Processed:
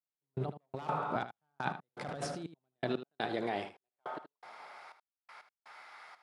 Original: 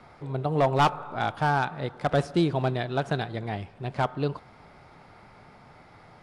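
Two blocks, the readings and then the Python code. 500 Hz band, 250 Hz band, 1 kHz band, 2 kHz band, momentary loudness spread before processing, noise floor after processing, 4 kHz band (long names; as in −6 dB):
−11.5 dB, −12.0 dB, −11.5 dB, −10.5 dB, 10 LU, below −85 dBFS, −10.5 dB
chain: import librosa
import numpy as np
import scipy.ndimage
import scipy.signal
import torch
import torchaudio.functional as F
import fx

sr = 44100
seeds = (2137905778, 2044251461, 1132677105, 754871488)

p1 = fx.step_gate(x, sr, bpm=122, pattern='...x..xxxx', floor_db=-60.0, edge_ms=4.5)
p2 = fx.over_compress(p1, sr, threshold_db=-33.0, ratio=-1.0)
p3 = fx.filter_sweep_highpass(p2, sr, from_hz=160.0, to_hz=1200.0, start_s=2.46, end_s=5.17, q=1.0)
p4 = p3 + fx.echo_single(p3, sr, ms=77, db=-12.0, dry=0)
y = p4 * 10.0 ** (-2.5 / 20.0)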